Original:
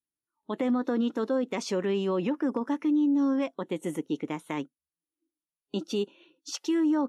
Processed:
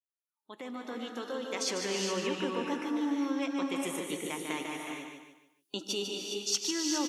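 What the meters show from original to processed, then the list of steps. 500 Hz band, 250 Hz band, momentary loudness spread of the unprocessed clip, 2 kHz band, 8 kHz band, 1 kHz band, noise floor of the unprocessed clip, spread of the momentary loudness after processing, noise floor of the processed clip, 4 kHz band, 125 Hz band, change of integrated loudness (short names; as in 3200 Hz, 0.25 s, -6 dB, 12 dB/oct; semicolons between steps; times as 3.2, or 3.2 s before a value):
-5.5 dB, -7.5 dB, 12 LU, +2.5 dB, n/a, -1.5 dB, under -85 dBFS, 11 LU, under -85 dBFS, +7.0 dB, -7.5 dB, -4.5 dB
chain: opening faded in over 2.02 s; low shelf 390 Hz -10.5 dB; feedback echo 0.148 s, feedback 34%, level -6.5 dB; in parallel at 0 dB: compressor, threshold -40 dBFS, peak gain reduction 13.5 dB; on the sum: high shelf 2500 Hz +10 dB; non-linear reverb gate 0.44 s rising, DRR 1.5 dB; gain -5.5 dB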